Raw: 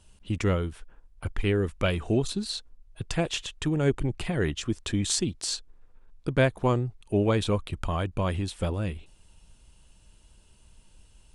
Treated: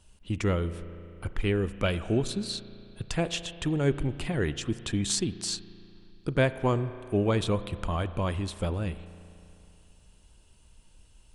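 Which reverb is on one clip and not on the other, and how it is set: spring tank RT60 2.8 s, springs 35 ms, chirp 55 ms, DRR 13 dB; gain -1.5 dB

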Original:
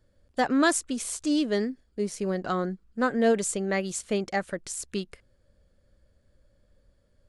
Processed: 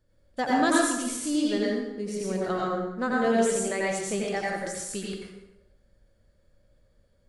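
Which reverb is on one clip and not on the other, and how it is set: plate-style reverb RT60 0.93 s, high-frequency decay 0.75×, pre-delay 75 ms, DRR -4.5 dB; gain -4.5 dB

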